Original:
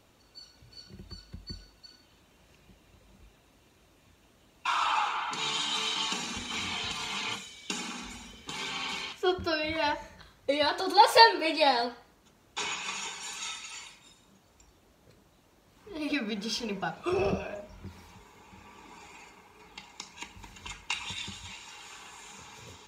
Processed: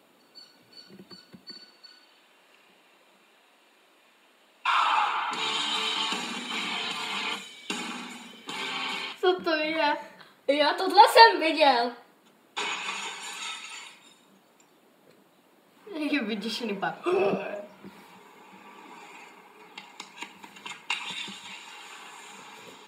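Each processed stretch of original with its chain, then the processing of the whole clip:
1.49–4.81 s: frequency weighting A + feedback delay 62 ms, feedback 53%, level -6.5 dB
whole clip: high-pass 190 Hz 24 dB/octave; peaking EQ 5.7 kHz -8.5 dB 0.61 oct; band-stop 6.1 kHz, Q 7.4; trim +4 dB

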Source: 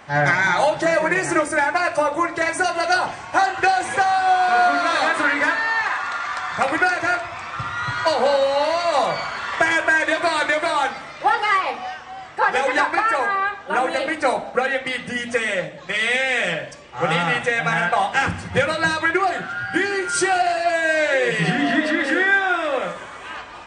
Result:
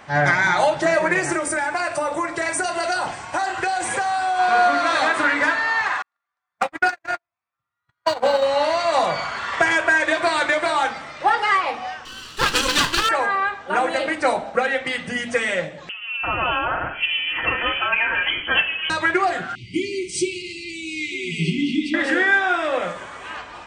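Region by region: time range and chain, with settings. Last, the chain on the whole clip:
1.32–4.39 s: peaking EQ 8.7 kHz +7 dB 1 oct + band-stop 6.4 kHz, Q 24 + compression 4:1, threshold -19 dBFS
6.02–8.45 s: median filter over 3 samples + gate -19 dBFS, range -57 dB
12.05–13.09 s: comb filter that takes the minimum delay 0.67 ms + FFT filter 1.2 kHz 0 dB, 1.7 kHz -4 dB, 3.4 kHz +11 dB
15.89–18.90 s: band-stop 2 kHz, Q 17 + bands offset in time lows, highs 340 ms, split 970 Hz + frequency inversion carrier 3.2 kHz
19.55–21.94 s: brick-wall FIR band-stop 410–2000 Hz + treble shelf 6.7 kHz -6.5 dB
whole clip: none

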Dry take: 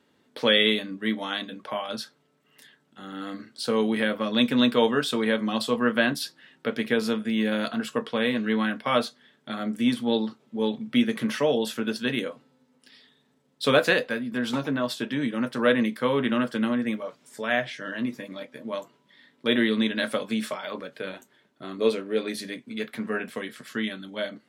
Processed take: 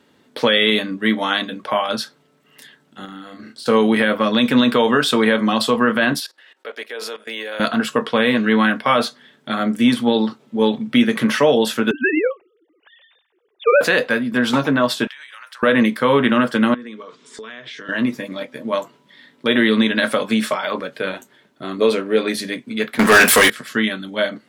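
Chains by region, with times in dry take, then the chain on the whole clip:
3.05–3.66 s: expander -53 dBFS + compression 10:1, threshold -42 dBFS + doubling 32 ms -4 dB
6.20–7.60 s: high-pass 430 Hz 24 dB/octave + level held to a coarse grid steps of 19 dB
11.91–13.81 s: formants replaced by sine waves + band-stop 1.3 kHz, Q 15
15.07–15.63 s: high-pass 1.1 kHz 24 dB/octave + compression 16:1, threshold -43 dBFS
16.74–17.89 s: cabinet simulation 170–8000 Hz, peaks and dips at 420 Hz +8 dB, 750 Hz -10 dB, 1.1 kHz +5 dB, 3.6 kHz +6 dB + compression 12:1, threshold -39 dBFS + band-stop 570 Hz, Q 6.1
22.99–23.50 s: RIAA curve recording + waveshaping leveller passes 5
whole clip: dynamic bell 1.2 kHz, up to +4 dB, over -39 dBFS, Q 0.76; peak limiter -14 dBFS; trim +9 dB

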